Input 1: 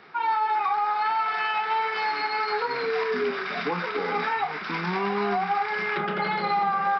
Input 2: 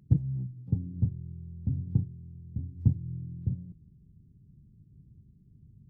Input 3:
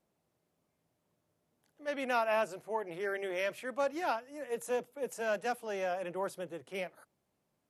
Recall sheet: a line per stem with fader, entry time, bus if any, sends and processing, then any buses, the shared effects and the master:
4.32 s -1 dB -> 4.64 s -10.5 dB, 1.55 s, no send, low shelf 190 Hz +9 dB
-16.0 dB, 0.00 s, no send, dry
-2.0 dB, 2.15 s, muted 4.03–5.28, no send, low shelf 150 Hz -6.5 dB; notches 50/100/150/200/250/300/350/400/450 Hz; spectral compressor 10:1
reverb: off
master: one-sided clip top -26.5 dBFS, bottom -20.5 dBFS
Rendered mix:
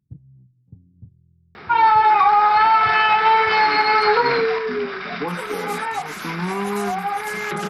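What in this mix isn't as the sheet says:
stem 1 -1.0 dB -> +10.0 dB; master: missing one-sided clip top -26.5 dBFS, bottom -20.5 dBFS

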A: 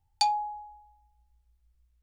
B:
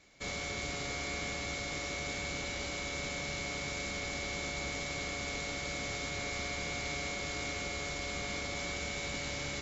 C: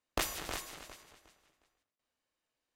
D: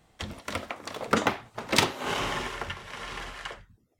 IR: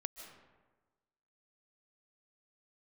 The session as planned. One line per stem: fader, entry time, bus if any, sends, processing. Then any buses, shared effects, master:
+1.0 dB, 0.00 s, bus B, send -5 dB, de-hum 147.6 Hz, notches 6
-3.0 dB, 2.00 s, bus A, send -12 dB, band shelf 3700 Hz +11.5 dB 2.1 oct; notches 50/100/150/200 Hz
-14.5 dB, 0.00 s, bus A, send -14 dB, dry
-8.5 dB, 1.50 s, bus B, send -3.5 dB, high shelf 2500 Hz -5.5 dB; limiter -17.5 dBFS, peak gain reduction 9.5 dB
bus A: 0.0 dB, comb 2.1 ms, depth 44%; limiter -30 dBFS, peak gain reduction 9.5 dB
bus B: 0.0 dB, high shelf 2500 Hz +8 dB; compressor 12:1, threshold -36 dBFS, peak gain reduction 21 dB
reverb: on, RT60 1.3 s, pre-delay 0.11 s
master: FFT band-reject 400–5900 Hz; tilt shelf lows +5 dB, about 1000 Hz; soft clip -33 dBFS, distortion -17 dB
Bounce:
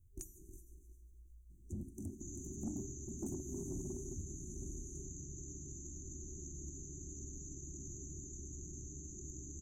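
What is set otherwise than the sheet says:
stem B: send -12 dB -> -23 dB; reverb return -6.5 dB

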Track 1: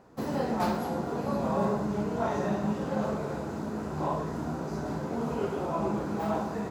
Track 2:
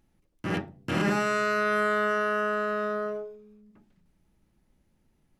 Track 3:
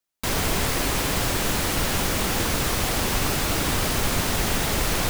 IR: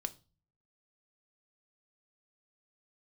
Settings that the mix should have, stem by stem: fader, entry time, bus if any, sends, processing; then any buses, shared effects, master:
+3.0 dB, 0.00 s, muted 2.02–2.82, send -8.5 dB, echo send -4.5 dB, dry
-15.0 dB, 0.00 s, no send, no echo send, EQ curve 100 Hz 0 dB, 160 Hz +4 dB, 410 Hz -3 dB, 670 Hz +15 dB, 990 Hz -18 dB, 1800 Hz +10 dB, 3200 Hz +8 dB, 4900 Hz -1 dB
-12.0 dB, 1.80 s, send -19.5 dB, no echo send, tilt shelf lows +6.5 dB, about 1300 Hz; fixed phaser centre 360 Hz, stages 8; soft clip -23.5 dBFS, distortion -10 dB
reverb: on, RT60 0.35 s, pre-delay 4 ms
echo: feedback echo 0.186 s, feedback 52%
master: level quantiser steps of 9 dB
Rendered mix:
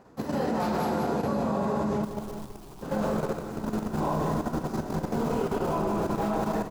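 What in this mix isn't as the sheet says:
stem 2: muted; reverb return -8.0 dB

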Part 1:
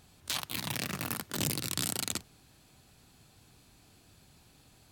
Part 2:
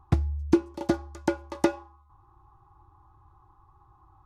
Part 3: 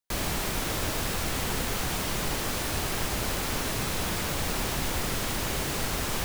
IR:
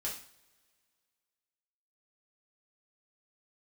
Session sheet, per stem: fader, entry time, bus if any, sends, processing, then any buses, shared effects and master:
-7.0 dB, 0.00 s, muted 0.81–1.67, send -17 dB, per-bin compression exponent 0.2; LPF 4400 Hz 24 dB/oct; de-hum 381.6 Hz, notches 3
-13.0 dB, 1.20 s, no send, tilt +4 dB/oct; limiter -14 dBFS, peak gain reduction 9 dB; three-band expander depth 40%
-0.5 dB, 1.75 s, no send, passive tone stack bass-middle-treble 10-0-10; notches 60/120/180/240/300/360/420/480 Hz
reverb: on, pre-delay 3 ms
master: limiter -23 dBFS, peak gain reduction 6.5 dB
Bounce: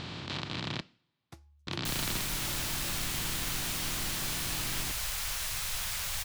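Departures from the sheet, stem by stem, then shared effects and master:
stem 2 -13.0 dB -> -20.0 dB; master: missing limiter -23 dBFS, peak gain reduction 6.5 dB

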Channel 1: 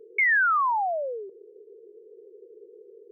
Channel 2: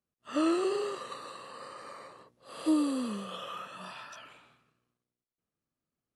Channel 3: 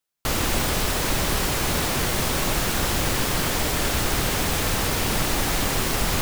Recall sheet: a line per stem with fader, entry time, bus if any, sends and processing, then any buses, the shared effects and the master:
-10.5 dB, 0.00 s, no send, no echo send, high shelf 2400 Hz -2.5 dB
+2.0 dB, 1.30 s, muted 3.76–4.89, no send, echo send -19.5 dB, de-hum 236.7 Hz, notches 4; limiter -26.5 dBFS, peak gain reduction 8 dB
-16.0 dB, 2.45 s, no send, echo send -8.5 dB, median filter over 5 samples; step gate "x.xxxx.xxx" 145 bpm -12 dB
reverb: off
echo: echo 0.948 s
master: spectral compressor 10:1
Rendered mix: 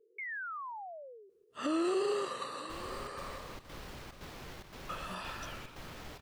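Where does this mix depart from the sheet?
stem 1 -10.5 dB -> -18.5 dB; stem 3 -16.0 dB -> -23.0 dB; master: missing spectral compressor 10:1

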